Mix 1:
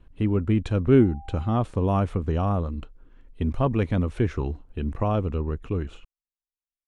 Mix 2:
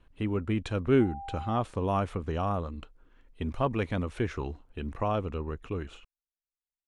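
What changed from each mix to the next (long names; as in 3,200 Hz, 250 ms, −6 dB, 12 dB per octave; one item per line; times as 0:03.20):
background +8.0 dB
master: add low-shelf EQ 440 Hz −9 dB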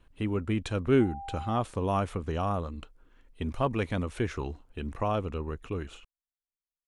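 master: add high-shelf EQ 7,000 Hz +9.5 dB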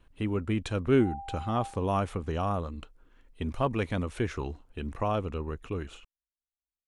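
reverb: on, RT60 1.0 s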